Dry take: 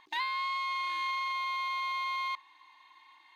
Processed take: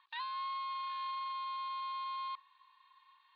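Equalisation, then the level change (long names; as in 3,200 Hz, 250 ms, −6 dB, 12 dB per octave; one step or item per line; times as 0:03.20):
Chebyshev band-pass filter 1,100–4,300 Hz, order 3
spectral tilt −2.5 dB per octave
notch filter 2,100 Hz, Q 5.2
−2.5 dB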